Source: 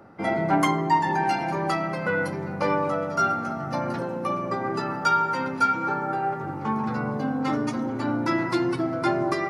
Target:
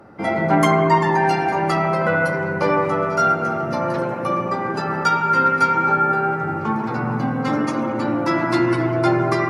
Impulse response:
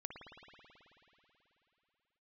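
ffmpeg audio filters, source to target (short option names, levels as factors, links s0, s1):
-filter_complex "[1:a]atrim=start_sample=2205,afade=t=out:st=0.38:d=0.01,atrim=end_sample=17199,asetrate=32193,aresample=44100[s0];[0:a][s0]afir=irnorm=-1:irlink=0,volume=2.51"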